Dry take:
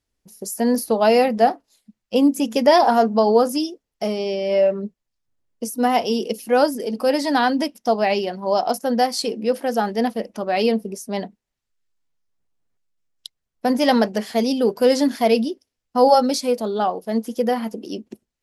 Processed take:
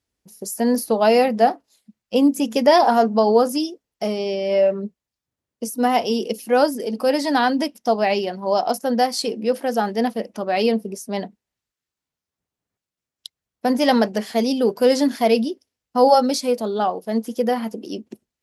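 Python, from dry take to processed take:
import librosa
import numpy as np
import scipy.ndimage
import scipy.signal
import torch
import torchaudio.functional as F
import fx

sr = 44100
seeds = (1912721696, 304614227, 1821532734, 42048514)

y = scipy.signal.sosfilt(scipy.signal.butter(2, 57.0, 'highpass', fs=sr, output='sos'), x)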